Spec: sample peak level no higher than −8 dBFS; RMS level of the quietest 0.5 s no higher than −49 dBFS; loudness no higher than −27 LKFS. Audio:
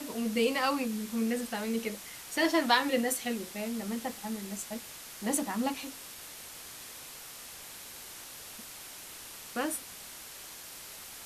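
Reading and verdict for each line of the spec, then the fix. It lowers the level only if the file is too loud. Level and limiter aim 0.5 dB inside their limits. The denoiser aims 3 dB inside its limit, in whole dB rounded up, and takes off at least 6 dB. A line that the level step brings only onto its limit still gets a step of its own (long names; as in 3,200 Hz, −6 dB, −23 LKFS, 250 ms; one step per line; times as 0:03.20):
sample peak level −10.5 dBFS: in spec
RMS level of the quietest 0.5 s −47 dBFS: out of spec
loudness −34.0 LKFS: in spec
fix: broadband denoise 6 dB, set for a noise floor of −47 dBFS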